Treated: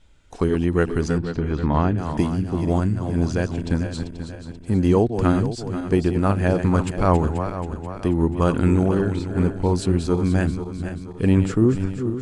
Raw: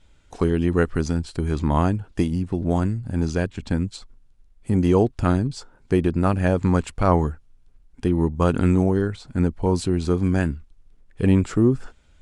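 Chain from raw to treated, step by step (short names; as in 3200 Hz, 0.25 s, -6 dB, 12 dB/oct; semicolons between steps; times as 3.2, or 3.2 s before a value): regenerating reverse delay 0.242 s, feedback 67%, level -8.5 dB; 1.18–1.98 LPF 3500 Hz 12 dB/oct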